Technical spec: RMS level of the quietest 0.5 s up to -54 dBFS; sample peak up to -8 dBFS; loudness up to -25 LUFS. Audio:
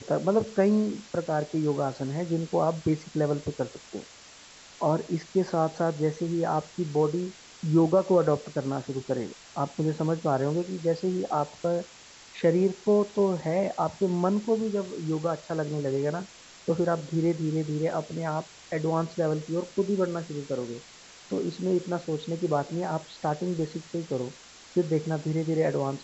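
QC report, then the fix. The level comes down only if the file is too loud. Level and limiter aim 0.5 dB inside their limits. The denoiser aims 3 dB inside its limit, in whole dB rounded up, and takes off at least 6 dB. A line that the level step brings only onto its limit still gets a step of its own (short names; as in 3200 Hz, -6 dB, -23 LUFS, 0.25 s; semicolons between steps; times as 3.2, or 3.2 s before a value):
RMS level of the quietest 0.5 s -50 dBFS: fail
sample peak -10.5 dBFS: OK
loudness -28.0 LUFS: OK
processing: denoiser 7 dB, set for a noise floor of -50 dBFS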